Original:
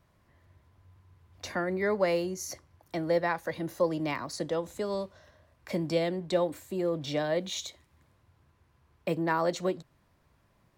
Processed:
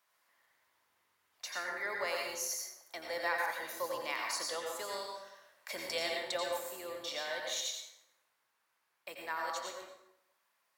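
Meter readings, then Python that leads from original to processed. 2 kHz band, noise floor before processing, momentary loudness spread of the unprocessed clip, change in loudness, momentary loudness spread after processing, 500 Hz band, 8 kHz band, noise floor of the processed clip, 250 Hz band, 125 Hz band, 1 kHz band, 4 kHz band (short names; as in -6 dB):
0.0 dB, -68 dBFS, 11 LU, -6.0 dB, 12 LU, -11.0 dB, +3.0 dB, -79 dBFS, -20.5 dB, -28.5 dB, -4.0 dB, +1.5 dB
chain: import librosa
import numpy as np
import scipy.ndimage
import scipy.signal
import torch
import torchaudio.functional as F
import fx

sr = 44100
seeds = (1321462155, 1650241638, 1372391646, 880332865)

y = fx.octave_divider(x, sr, octaves=2, level_db=3.0)
y = scipy.signal.sosfilt(scipy.signal.butter(2, 1000.0, 'highpass', fs=sr, output='sos'), y)
y = fx.high_shelf(y, sr, hz=6800.0, db=8.0)
y = fx.rider(y, sr, range_db=10, speed_s=2.0)
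y = fx.rev_plate(y, sr, seeds[0], rt60_s=0.86, hf_ratio=0.7, predelay_ms=75, drr_db=0.0)
y = y * librosa.db_to_amplitude(-3.5)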